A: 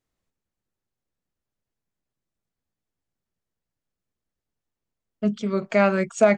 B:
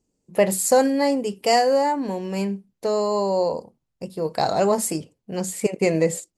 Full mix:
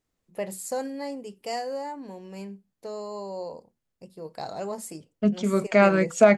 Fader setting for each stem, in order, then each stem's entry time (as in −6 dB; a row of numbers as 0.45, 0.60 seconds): +1.0, −13.5 decibels; 0.00, 0.00 seconds